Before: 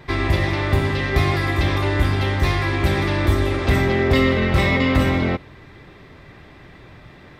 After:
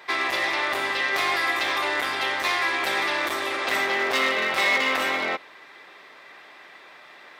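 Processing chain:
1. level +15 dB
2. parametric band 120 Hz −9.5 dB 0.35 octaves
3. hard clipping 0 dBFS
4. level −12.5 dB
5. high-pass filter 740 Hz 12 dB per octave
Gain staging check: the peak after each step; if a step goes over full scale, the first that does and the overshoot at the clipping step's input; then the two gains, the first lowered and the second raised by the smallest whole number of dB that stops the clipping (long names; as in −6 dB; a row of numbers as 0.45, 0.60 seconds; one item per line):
+10.0, +10.0, 0.0, −12.5, −10.0 dBFS
step 1, 10.0 dB
step 1 +5 dB, step 4 −2.5 dB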